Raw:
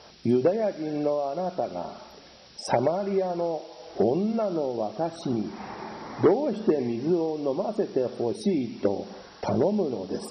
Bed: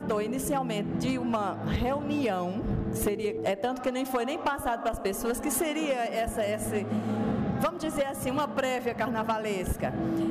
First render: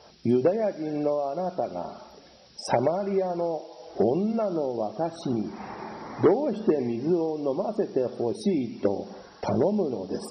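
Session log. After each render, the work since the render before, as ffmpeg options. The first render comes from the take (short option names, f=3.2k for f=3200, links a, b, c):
-af "afftdn=nr=6:nf=-50"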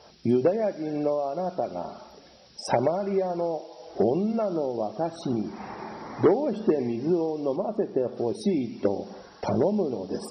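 -filter_complex "[0:a]asettb=1/sr,asplit=3[a][b][c];[a]atrim=end=7.564[d];[b]atrim=start=7.56:end=8.17,asetpts=PTS-STARTPTS,afade=t=in:d=0.004:c=qsin,afade=t=out:st=0.606:d=0.004:c=qsin,aemphasis=mode=reproduction:type=75kf[e];[c]atrim=start=8.166[f];[d][e]acrossfade=d=0.004:c1=hsin:c2=qsin[g];[g][f]acrossfade=d=0.004:c1=qsin:c2=hsin"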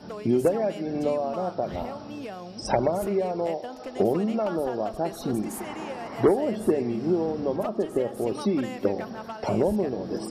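-filter_complex "[1:a]volume=-9dB[a];[0:a][a]amix=inputs=2:normalize=0"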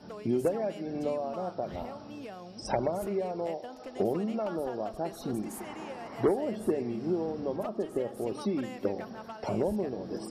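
-af "volume=-6dB"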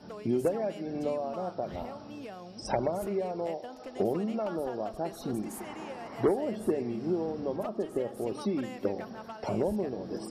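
-af anull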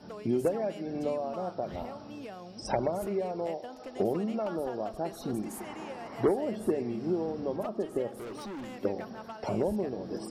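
-filter_complex "[0:a]asettb=1/sr,asplit=3[a][b][c];[a]atrim=end=8.094[d];[b]atrim=start=8.09:end=8.78,asetpts=PTS-STARTPTS,afade=t=in:d=0.004:c=qsin,afade=t=out:st=0.686:d=0.004:c=qsin,asoftclip=type=hard:threshold=-38dB[e];[c]atrim=start=8.776[f];[d][e]acrossfade=d=0.004:c1=hsin:c2=qsin[g];[g][f]acrossfade=d=0.004:c1=qsin:c2=hsin"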